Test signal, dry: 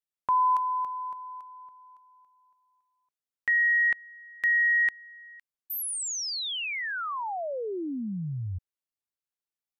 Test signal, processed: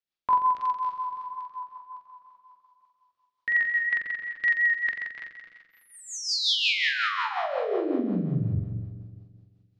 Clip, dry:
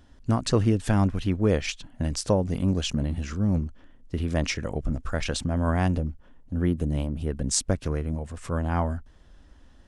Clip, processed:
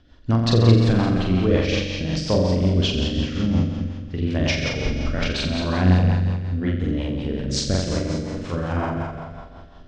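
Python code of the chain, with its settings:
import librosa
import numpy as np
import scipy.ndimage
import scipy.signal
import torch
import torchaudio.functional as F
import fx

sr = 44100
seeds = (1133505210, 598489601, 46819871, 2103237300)

p1 = fx.reverse_delay_fb(x, sr, ms=148, feedback_pct=58, wet_db=-8.0)
p2 = p1 + fx.room_flutter(p1, sr, wall_m=7.5, rt60_s=1.3, dry=0)
p3 = fx.rotary(p2, sr, hz=5.5)
p4 = scipy.signal.sosfilt(scipy.signal.butter(4, 4500.0, 'lowpass', fs=sr, output='sos'), p3)
p5 = fx.high_shelf(p4, sr, hz=3500.0, db=10.0)
y = p5 * librosa.db_to_amplitude(1.5)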